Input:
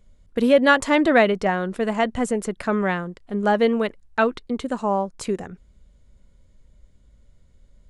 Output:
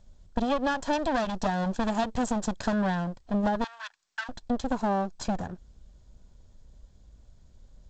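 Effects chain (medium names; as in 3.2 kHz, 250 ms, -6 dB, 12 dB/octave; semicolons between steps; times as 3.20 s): comb filter that takes the minimum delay 1.2 ms; 0.93–2.74 s: treble shelf 5 kHz +9.5 dB; compression 12:1, threshold -24 dBFS, peak gain reduction 13.5 dB; 3.64–4.29 s: high-pass 1.3 kHz 24 dB/octave; peaking EQ 2.3 kHz -10.5 dB 0.67 oct; trim +1.5 dB; G.722 64 kbps 16 kHz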